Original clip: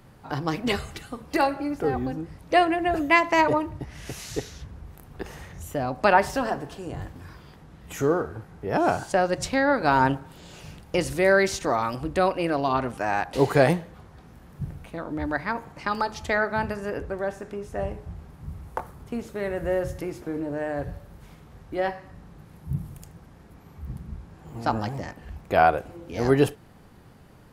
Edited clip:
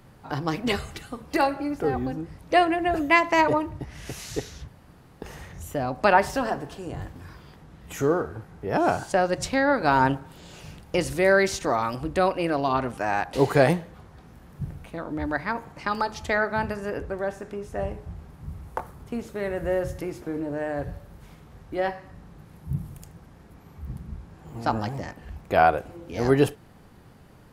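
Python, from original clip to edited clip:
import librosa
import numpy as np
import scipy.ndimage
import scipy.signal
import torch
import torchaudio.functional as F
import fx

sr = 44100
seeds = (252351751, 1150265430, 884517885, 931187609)

y = fx.edit(x, sr, fx.room_tone_fill(start_s=4.68, length_s=0.54), tone=tone)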